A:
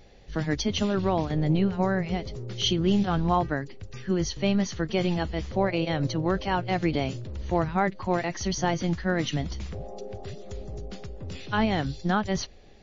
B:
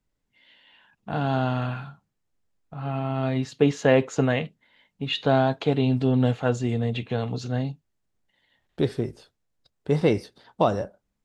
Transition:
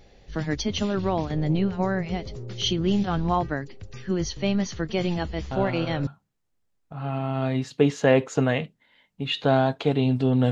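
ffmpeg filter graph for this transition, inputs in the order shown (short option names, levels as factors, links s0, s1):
-filter_complex "[1:a]asplit=2[s0][s1];[0:a]apad=whole_dur=10.51,atrim=end=10.51,atrim=end=6.072[s2];[s1]atrim=start=1.878:end=6.32[s3];[s0]atrim=start=1.32:end=1.88,asetpts=PTS-STARTPTS,volume=0.473,afade=t=in:d=0.004:c=hsin,afade=t=out:st=0.556:d=0.004:c=hsin,adelay=5510[s4];[s2][s3]acrossfade=d=0.004:c1=hsin:c2=hsin[s5];[s5][s4]amix=inputs=2:normalize=0"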